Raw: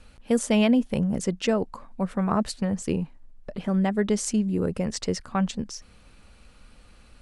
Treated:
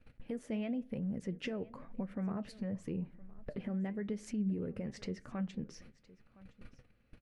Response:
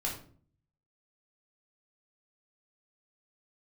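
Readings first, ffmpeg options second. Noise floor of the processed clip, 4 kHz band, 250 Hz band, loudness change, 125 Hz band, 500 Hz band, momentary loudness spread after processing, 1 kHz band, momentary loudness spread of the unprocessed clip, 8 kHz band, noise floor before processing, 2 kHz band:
-69 dBFS, -18.5 dB, -13.0 dB, -14.0 dB, -12.0 dB, -16.0 dB, 10 LU, -20.0 dB, 13 LU, -24.5 dB, -54 dBFS, -15.0 dB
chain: -filter_complex "[0:a]agate=range=-26dB:threshold=-46dB:ratio=16:detection=peak,equalizer=f=125:t=o:w=1:g=10,equalizer=f=250:t=o:w=1:g=5,equalizer=f=500:t=o:w=1:g=6,equalizer=f=1k:t=o:w=1:g=-4,equalizer=f=2k:t=o:w=1:g=8,equalizer=f=4k:t=o:w=1:g=-3,equalizer=f=8k:t=o:w=1:g=-11,acompressor=threshold=-49dB:ratio=2,alimiter=level_in=8.5dB:limit=-24dB:level=0:latency=1:release=185,volume=-8.5dB,flanger=delay=2.8:depth=6.4:regen=72:speed=0.94:shape=triangular,aecho=1:1:1014:0.0891,asplit=2[a][b];[1:a]atrim=start_sample=2205,lowpass=2.7k[c];[b][c]afir=irnorm=-1:irlink=0,volume=-21.5dB[d];[a][d]amix=inputs=2:normalize=0,volume=7dB"

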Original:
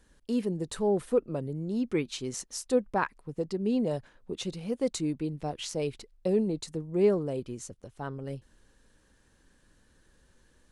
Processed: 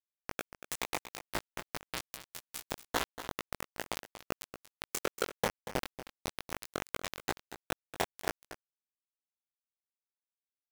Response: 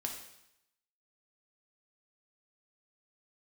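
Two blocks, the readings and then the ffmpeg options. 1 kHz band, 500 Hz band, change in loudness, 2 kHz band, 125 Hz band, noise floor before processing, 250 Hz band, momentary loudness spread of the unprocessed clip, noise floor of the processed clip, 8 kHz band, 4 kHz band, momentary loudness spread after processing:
-2.0 dB, -13.0 dB, -8.5 dB, +3.0 dB, -13.5 dB, -65 dBFS, -16.5 dB, 13 LU, under -85 dBFS, -1.5 dB, 0.0 dB, 9 LU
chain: -filter_complex "[0:a]afftfilt=real='re*lt(hypot(re,im),0.141)':imag='im*lt(hypot(re,im),0.141)':win_size=1024:overlap=0.75,agate=range=-40dB:threshold=-53dB:ratio=16:detection=peak,bass=f=250:g=-3,treble=f=4k:g=-2,acrossover=split=240|3000[a][b][c];[a]acompressor=threshold=-50dB:ratio=4[d];[d][b][c]amix=inputs=3:normalize=0,equalizer=f=125:t=o:w=1:g=9,equalizer=f=250:t=o:w=1:g=-4,equalizer=f=500:t=o:w=1:g=8,equalizer=f=1k:t=o:w=1:g=5,equalizer=f=2k:t=o:w=1:g=8,equalizer=f=4k:t=o:w=1:g=-12,equalizer=f=8k:t=o:w=1:g=5,acompressor=threshold=-35dB:ratio=8,aeval=exprs='0.0501*(cos(1*acos(clip(val(0)/0.0501,-1,1)))-cos(1*PI/2))+0.000355*(cos(2*acos(clip(val(0)/0.0501,-1,1)))-cos(2*PI/2))':c=same,acrusher=bits=7:mode=log:mix=0:aa=0.000001,afftfilt=real='hypot(re,im)*cos(2*PI*random(0))':imag='hypot(re,im)*sin(2*PI*random(1))':win_size=512:overlap=0.75,acrusher=bits=5:mix=0:aa=0.000001,flanger=delay=17:depth=6.1:speed=2.3,asplit=2[e][f];[f]aecho=0:1:235:0.237[g];[e][g]amix=inputs=2:normalize=0,volume=15.5dB"

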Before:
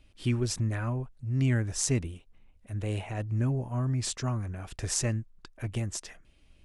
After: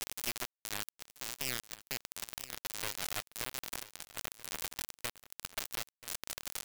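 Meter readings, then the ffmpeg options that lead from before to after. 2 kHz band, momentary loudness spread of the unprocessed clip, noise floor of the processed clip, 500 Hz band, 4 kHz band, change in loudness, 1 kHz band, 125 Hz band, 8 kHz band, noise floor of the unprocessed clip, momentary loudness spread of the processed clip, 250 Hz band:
-1.0 dB, 12 LU, under -85 dBFS, -12.5 dB, +0.5 dB, -8.5 dB, -3.5 dB, -28.0 dB, -6.0 dB, -61 dBFS, 6 LU, -21.0 dB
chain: -af "aeval=exprs='val(0)+0.5*0.0299*sgn(val(0))':c=same,highpass=630,highshelf=f=2.7k:g=-10.5,acompressor=threshold=-43dB:ratio=5,aresample=8000,asoftclip=type=tanh:threshold=-40dB,aresample=44100,acrusher=bits=4:dc=4:mix=0:aa=0.000001,crystalizer=i=1:c=0,aecho=1:1:984:0.15,volume=11.5dB"

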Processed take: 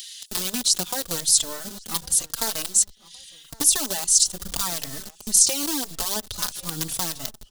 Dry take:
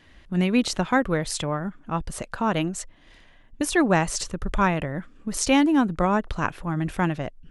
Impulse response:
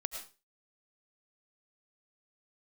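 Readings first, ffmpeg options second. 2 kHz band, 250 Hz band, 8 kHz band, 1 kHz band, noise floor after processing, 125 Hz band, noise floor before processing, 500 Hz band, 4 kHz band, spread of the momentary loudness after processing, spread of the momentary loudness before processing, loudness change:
-9.5 dB, -13.0 dB, +14.0 dB, -10.0 dB, -51 dBFS, -12.5 dB, -53 dBFS, -10.5 dB, +8.5 dB, 12 LU, 11 LU, +3.0 dB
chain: -filter_complex "[0:a]highshelf=f=4.4k:g=4,bandreject=f=50:t=h:w=6,bandreject=f=100:t=h:w=6,bandreject=f=150:t=h:w=6,bandreject=f=200:t=h:w=6,acrossover=split=2300[a][b];[a]acrusher=bits=4:dc=4:mix=0:aa=0.000001[c];[c][b]amix=inputs=2:normalize=0,alimiter=limit=-12.5dB:level=0:latency=1:release=42,acompressor=threshold=-24dB:ratio=6,aexciter=amount=6.7:drive=4.3:freq=3.3k,acompressor=mode=upward:threshold=-22dB:ratio=2.5,asplit=2[d][e];[e]adelay=1110,lowpass=f=2.8k:p=1,volume=-22.5dB,asplit=2[f][g];[g]adelay=1110,lowpass=f=2.8k:p=1,volume=0.43,asplit=2[h][i];[i]adelay=1110,lowpass=f=2.8k:p=1,volume=0.43[j];[f][h][j]amix=inputs=3:normalize=0[k];[d][k]amix=inputs=2:normalize=0,asplit=2[l][m];[m]adelay=3.9,afreqshift=-0.86[n];[l][n]amix=inputs=2:normalize=1,volume=-1dB"

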